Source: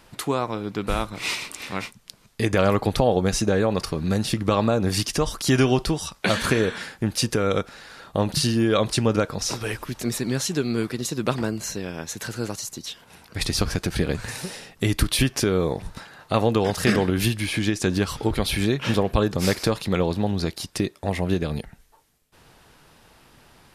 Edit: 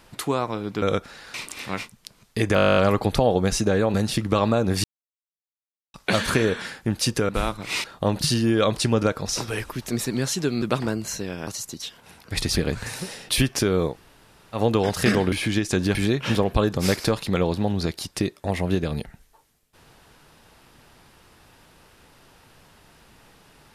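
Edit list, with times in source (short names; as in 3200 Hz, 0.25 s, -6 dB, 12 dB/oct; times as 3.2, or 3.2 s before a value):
0.82–1.37 swap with 7.45–7.97
2.58 stutter 0.02 s, 12 plays
3.75–4.1 cut
5–6.1 mute
10.75–11.18 cut
12.03–12.51 cut
13.6–13.98 cut
14.71–15.1 cut
15.72–16.38 room tone, crossfade 0.10 s
17.13–17.43 cut
18.06–18.54 cut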